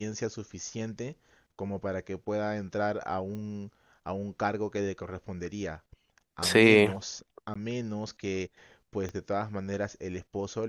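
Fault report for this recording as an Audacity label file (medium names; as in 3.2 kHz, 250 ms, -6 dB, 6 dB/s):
3.350000	3.350000	pop -28 dBFS
7.540000	7.550000	dropout 15 ms
9.090000	9.090000	pop -25 dBFS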